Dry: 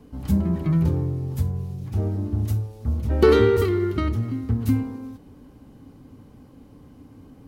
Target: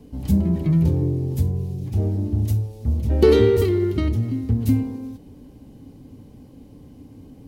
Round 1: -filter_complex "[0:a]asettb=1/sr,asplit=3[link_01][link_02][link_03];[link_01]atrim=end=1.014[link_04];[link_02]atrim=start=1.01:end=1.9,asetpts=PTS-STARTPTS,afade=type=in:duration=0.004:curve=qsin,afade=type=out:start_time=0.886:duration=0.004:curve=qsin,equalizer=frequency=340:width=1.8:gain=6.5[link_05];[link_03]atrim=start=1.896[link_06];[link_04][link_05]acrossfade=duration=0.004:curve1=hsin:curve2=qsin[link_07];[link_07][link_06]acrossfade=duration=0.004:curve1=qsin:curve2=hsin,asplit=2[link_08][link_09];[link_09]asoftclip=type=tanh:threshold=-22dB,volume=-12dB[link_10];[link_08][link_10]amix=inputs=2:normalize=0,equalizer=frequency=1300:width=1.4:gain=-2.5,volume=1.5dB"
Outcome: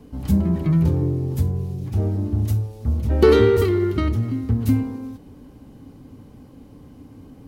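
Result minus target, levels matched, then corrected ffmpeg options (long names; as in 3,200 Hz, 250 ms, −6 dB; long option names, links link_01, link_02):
1,000 Hz band +5.5 dB
-filter_complex "[0:a]asettb=1/sr,asplit=3[link_01][link_02][link_03];[link_01]atrim=end=1.014[link_04];[link_02]atrim=start=1.01:end=1.9,asetpts=PTS-STARTPTS,afade=type=in:duration=0.004:curve=qsin,afade=type=out:start_time=0.886:duration=0.004:curve=qsin,equalizer=frequency=340:width=1.8:gain=6.5[link_05];[link_03]atrim=start=1.896[link_06];[link_04][link_05]acrossfade=duration=0.004:curve1=hsin:curve2=qsin[link_07];[link_07][link_06]acrossfade=duration=0.004:curve1=qsin:curve2=hsin,asplit=2[link_08][link_09];[link_09]asoftclip=type=tanh:threshold=-22dB,volume=-12dB[link_10];[link_08][link_10]amix=inputs=2:normalize=0,equalizer=frequency=1300:width=1.4:gain=-11,volume=1.5dB"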